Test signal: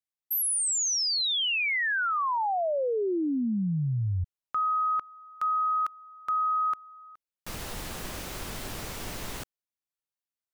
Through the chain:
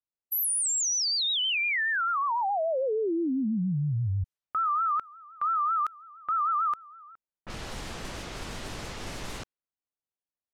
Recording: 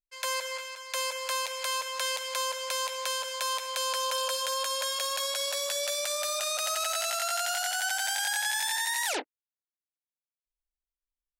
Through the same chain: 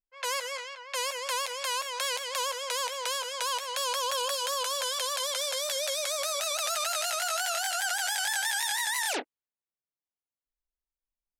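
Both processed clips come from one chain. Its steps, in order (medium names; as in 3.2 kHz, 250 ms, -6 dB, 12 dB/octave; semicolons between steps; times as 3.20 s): level-controlled noise filter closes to 990 Hz, open at -30 dBFS; wow and flutter 6 Hz 120 cents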